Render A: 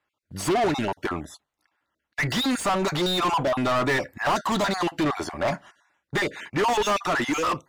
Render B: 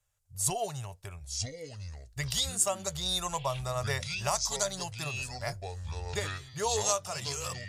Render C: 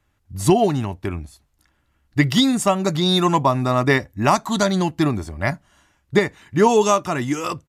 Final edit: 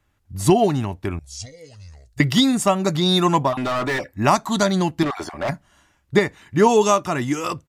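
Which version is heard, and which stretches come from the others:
C
0:01.19–0:02.20: punch in from B
0:03.49–0:04.13: punch in from A, crossfade 0.16 s
0:05.03–0:05.49: punch in from A

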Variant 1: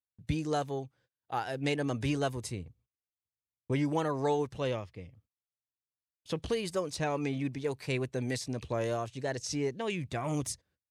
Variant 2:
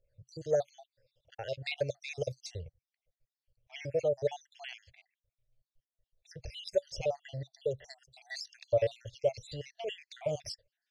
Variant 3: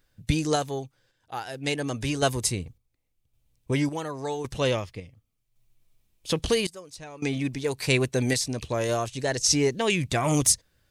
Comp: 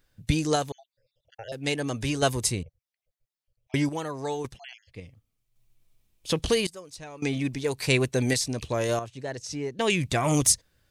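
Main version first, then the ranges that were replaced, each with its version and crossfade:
3
0:00.72–0:01.52: punch in from 2
0:02.63–0:03.74: punch in from 2
0:04.51–0:04.96: punch in from 2, crossfade 0.16 s
0:08.99–0:09.79: punch in from 1

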